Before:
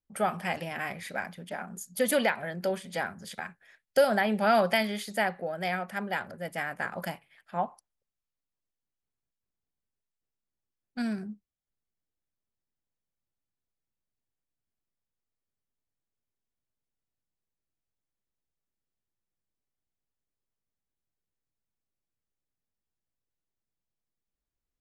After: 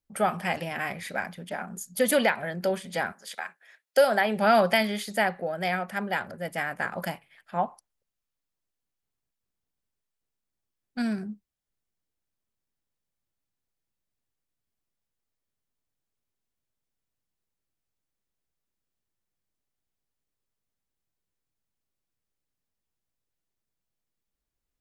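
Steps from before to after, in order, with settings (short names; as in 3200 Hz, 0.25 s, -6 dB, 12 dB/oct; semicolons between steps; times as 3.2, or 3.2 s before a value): 3.11–4.36 HPF 690 Hz -> 250 Hz 12 dB/oct; gain +3 dB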